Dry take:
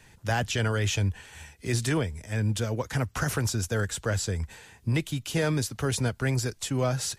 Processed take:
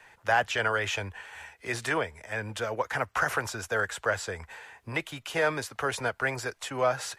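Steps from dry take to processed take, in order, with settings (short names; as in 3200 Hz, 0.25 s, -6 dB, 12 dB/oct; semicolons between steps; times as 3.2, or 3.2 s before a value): three-band isolator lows -21 dB, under 520 Hz, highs -14 dB, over 2400 Hz; gain +7 dB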